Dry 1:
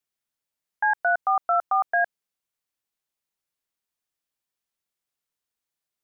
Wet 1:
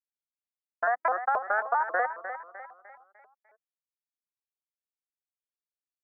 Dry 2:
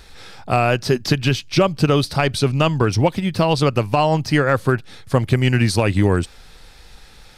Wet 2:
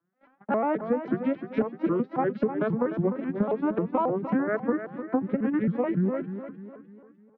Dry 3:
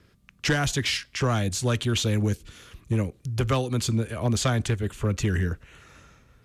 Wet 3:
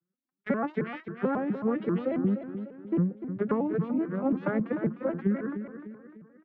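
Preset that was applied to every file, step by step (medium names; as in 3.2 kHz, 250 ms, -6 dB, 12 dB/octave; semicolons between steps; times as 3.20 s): vocoder on a broken chord major triad, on G3, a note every 124 ms; low-pass 1.8 kHz 24 dB/octave; gate -45 dBFS, range -29 dB; comb 5.7 ms, depth 48%; compression 6:1, threshold -24 dBFS; feedback delay 301 ms, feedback 44%, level -10 dB; vibrato with a chosen wave saw up 3.7 Hz, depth 250 cents; trim +1 dB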